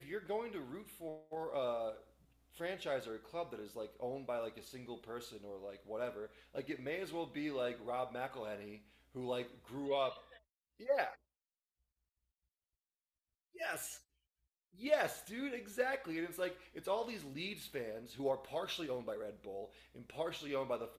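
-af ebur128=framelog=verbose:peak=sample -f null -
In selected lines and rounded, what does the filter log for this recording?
Integrated loudness:
  I:         -41.8 LUFS
  Threshold: -52.2 LUFS
Loudness range:
  LRA:         5.4 LU
  Threshold: -62.7 LUFS
  LRA low:   -45.5 LUFS
  LRA high:  -40.1 LUFS
Sample peak:
  Peak:      -19.8 dBFS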